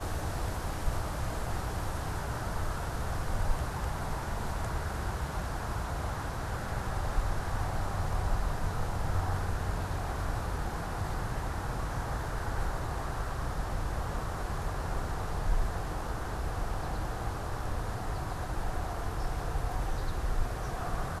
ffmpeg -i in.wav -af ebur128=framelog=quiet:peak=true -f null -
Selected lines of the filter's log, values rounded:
Integrated loudness:
  I:         -35.5 LUFS
  Threshold: -45.5 LUFS
Loudness range:
  LRA:         2.1 LU
  Threshold: -55.5 LUFS
  LRA low:   -36.2 LUFS
  LRA high:  -34.2 LUFS
True peak:
  Peak:      -15.9 dBFS